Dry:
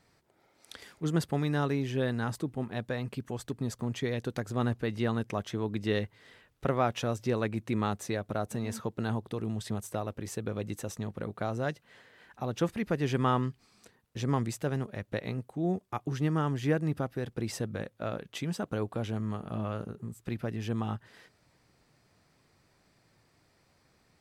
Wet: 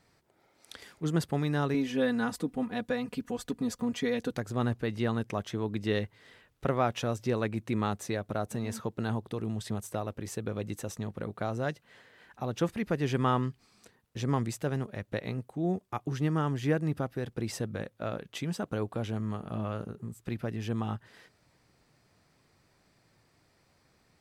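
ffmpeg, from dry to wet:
-filter_complex "[0:a]asettb=1/sr,asplit=3[a][b][c];[a]atrim=end=1.744[d];[b]atrim=start=1.74:end=4.31,asetpts=PTS-STARTPTS,afade=t=in:d=0.004:c=qsin,afade=t=out:st=2.566:d=0.004:c=qsin,aecho=1:1:4.1:0.83,atrim=end_sample=113337[e];[c]atrim=start=4.306[f];[d][e]acrossfade=d=0.004:c1=hsin:c2=qsin[g];[g][f]acrossfade=d=0.004:c1=qsin:c2=hsin"

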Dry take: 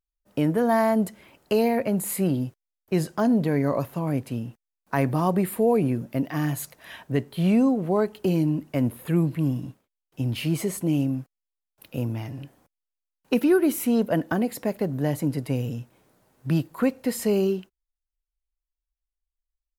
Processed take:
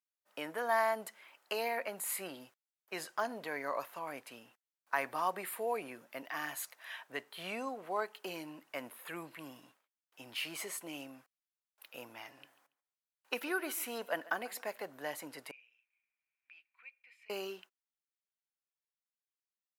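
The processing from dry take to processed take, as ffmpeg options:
-filter_complex "[0:a]asettb=1/sr,asplit=3[a][b][c];[a]atrim=end=12.304[d];[b]atrim=start=12.3:end=14.86,asetpts=PTS-STARTPTS,afade=t=in:d=0.004:c=qsin,afade=t=out:st=2.556:d=0.004:c=qsin,aecho=1:1:141|282:0.106|0.0265,atrim=end_sample=112896[e];[c]atrim=start=14.856[f];[d][e]acrossfade=d=0.004:c1=hsin:c2=qsin[g];[g][f]acrossfade=d=0.004:c1=qsin:c2=hsin,asettb=1/sr,asplit=3[h][i][j];[h]atrim=end=15.514[k];[i]atrim=start=15.51:end=17.3,asetpts=PTS-STARTPTS,afade=t=in:d=0.004:c=qsin,afade=t=out:st=1.786:d=0.004:c=qsin,bandpass=f=2.4k:t=q:w=20[l];[j]atrim=start=17.296[m];[k][l]acrossfade=d=0.004:c1=hsin:c2=qsin[n];[n][m]acrossfade=d=0.004:c1=qsin:c2=hsin,highpass=1.2k,highshelf=f=2.5k:g=-8.5,volume=1dB"

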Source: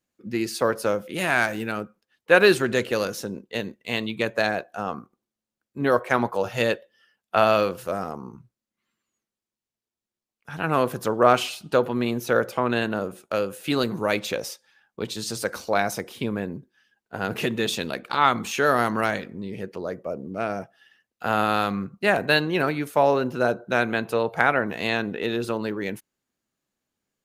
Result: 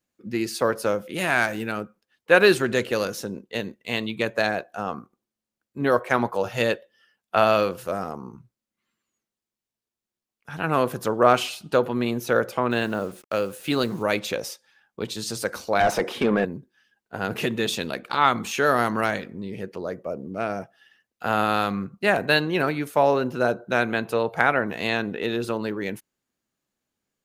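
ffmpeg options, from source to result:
-filter_complex "[0:a]asettb=1/sr,asplit=3[a][b][c];[a]atrim=end=12.714[d];[b]atrim=start=12.71:end=14.03,asetpts=PTS-STARTPTS,afade=t=in:d=0.004:c=qsin,afade=t=out:st=1.316:d=0.004:c=qsin,acrusher=bits=7:mix=0:aa=0.5[e];[c]atrim=start=14.026[f];[d][e]acrossfade=d=0.004:c1=hsin:c2=qsin[g];[g][f]acrossfade=d=0.004:c1=qsin:c2=hsin,asettb=1/sr,asplit=3[h][i][j];[h]atrim=end=15.804[k];[i]atrim=start=15.8:end=16.45,asetpts=PTS-STARTPTS,afade=t=in:d=0.004:c=qsin,afade=t=out:st=0.646:d=0.004:c=qsin,asplit=2[l][m];[m]highpass=f=720:p=1,volume=25dB,asoftclip=type=tanh:threshold=-8.5dB[n];[l][n]amix=inputs=2:normalize=0,lowpass=f=1.1k:p=1,volume=-6dB[o];[j]atrim=start=16.446[p];[k][o]acrossfade=d=0.004:c1=hsin:c2=qsin[q];[q][p]acrossfade=d=0.004:c1=qsin:c2=hsin"

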